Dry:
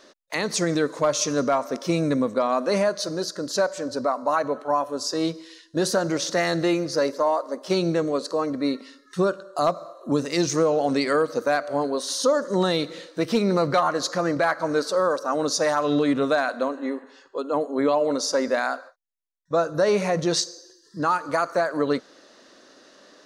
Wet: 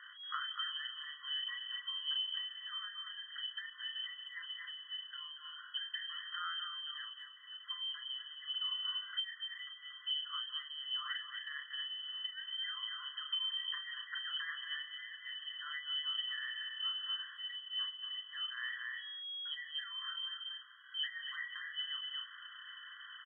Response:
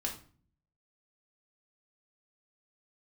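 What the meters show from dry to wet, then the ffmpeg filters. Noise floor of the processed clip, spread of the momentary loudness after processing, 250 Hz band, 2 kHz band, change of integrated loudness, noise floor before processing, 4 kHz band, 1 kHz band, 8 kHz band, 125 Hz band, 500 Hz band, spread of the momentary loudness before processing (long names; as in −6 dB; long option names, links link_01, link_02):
−55 dBFS, 8 LU, below −40 dB, −12.0 dB, −16.0 dB, −56 dBFS, −2.0 dB, −25.0 dB, below −40 dB, below −40 dB, below −40 dB, 6 LU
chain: -filter_complex "[0:a]aeval=exprs='val(0)+0.5*0.0112*sgn(val(0))':channel_layout=same,asplit=2[link_01][link_02];[link_02]adelay=34,volume=-5dB[link_03];[link_01][link_03]amix=inputs=2:normalize=0,asplit=2[link_04][link_05];[link_05]adelay=233.2,volume=-7dB,highshelf=frequency=4000:gain=-5.25[link_06];[link_04][link_06]amix=inputs=2:normalize=0,lowpass=frequency=2800:width_type=q:width=0.5098,lowpass=frequency=2800:width_type=q:width=0.6013,lowpass=frequency=2800:width_type=q:width=0.9,lowpass=frequency=2800:width_type=q:width=2.563,afreqshift=-3300,acompressor=threshold=-28dB:ratio=6,afftfilt=real='re*eq(mod(floor(b*sr/1024/1000),2),1)':imag='im*eq(mod(floor(b*sr/1024/1000),2),1)':win_size=1024:overlap=0.75,volume=-5dB"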